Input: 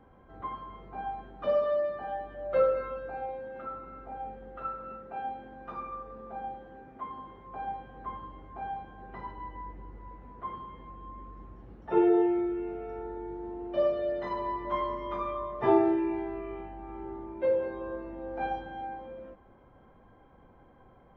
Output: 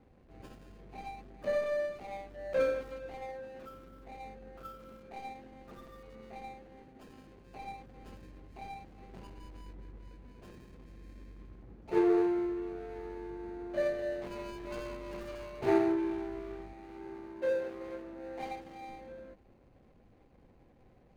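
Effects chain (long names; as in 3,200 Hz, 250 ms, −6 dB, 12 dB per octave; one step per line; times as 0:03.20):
running median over 41 samples
0:16.73–0:18.88: low-shelf EQ 100 Hz −12 dB
level −2.5 dB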